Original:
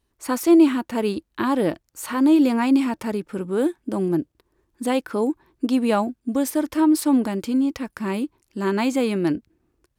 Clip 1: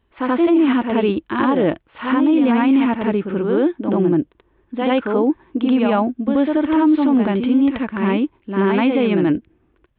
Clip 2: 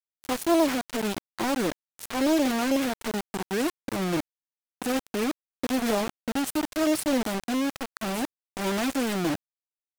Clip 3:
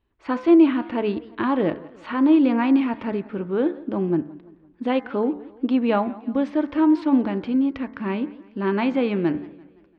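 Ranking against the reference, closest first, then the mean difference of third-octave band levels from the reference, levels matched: 3, 1, 2; 5.0 dB, 7.0 dB, 10.5 dB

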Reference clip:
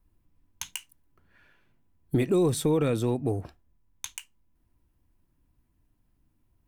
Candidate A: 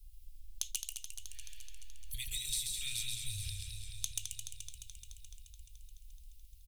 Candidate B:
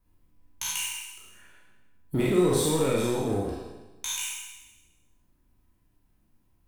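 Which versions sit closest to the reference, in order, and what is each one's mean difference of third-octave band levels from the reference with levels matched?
B, A; 9.0 dB, 19.5 dB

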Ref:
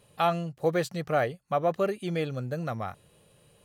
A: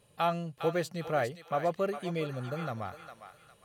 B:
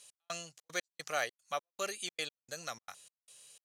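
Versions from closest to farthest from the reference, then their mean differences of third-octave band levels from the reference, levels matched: A, B; 3.5 dB, 13.5 dB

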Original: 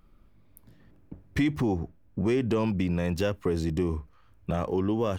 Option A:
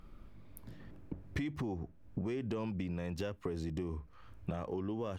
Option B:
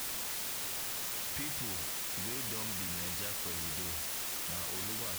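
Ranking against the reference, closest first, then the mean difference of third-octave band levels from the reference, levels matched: A, B; 3.5 dB, 21.0 dB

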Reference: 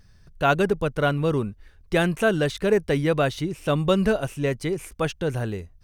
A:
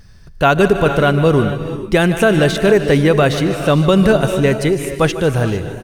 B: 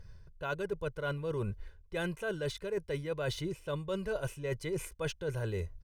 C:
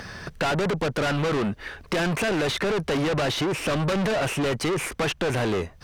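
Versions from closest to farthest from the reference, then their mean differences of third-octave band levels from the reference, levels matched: B, A, C; 4.0 dB, 5.5 dB, 8.5 dB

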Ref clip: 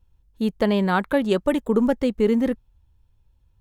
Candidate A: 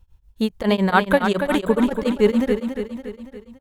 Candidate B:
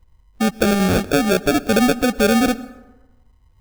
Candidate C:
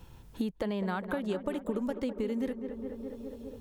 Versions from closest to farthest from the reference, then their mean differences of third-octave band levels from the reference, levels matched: C, A, B; 4.0 dB, 6.5 dB, 12.5 dB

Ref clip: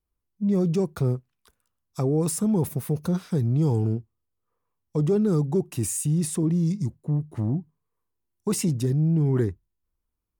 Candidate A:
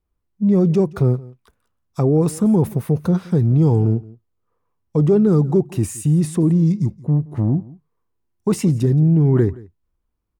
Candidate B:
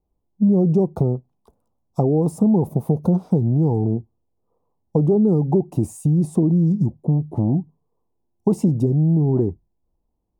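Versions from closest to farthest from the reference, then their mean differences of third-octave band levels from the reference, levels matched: A, B; 3.0 dB, 5.5 dB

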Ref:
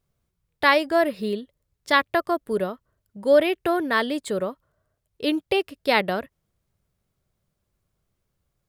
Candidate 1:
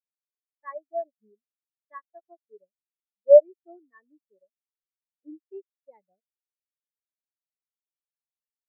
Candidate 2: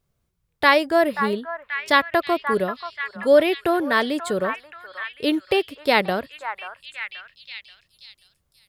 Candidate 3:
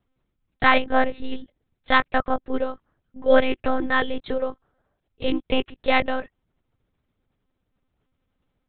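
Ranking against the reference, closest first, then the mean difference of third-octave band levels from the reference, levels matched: 2, 3, 1; 2.0 dB, 9.0 dB, 18.5 dB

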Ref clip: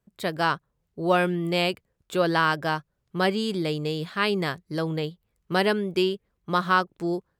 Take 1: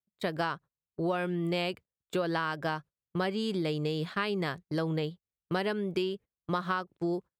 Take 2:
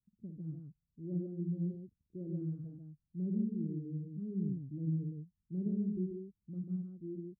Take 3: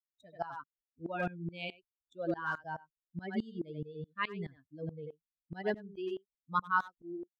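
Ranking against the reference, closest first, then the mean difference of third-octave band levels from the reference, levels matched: 1, 3, 2; 2.5 dB, 12.0 dB, 18.0 dB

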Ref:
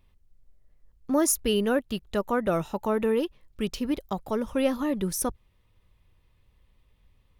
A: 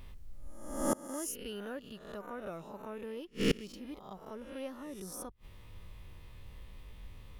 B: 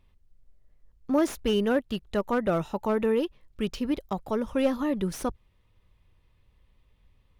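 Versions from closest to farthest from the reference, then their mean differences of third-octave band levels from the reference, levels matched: B, A; 2.0 dB, 6.5 dB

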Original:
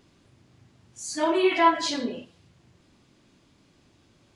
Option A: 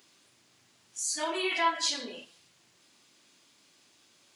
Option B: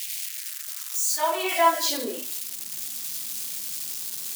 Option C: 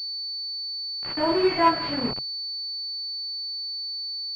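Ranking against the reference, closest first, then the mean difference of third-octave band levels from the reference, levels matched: A, C, B; 6.0 dB, 8.5 dB, 11.5 dB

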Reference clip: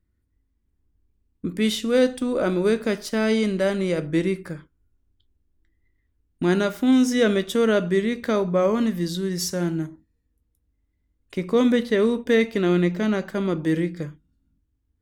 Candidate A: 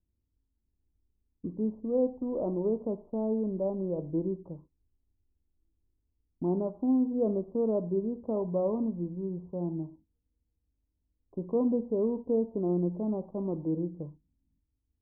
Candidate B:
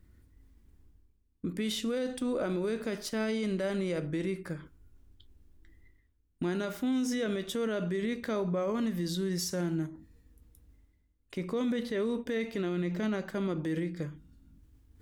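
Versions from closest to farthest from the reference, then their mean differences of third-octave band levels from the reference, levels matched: B, A; 3.0 dB, 10.5 dB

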